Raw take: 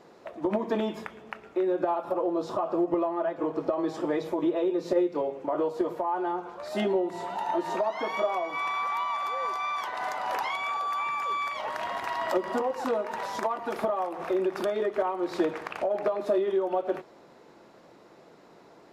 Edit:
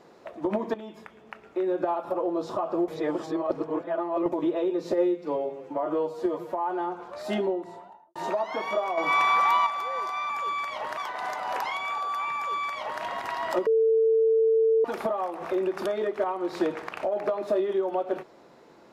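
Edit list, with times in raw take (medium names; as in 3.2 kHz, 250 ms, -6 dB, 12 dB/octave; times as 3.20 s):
0.74–1.72 s: fade in, from -15 dB
2.88–4.32 s: reverse
4.92–5.99 s: stretch 1.5×
6.74–7.62 s: studio fade out
8.44–9.13 s: gain +8 dB
11.13–11.81 s: copy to 9.76 s
12.45–13.63 s: bleep 447 Hz -18 dBFS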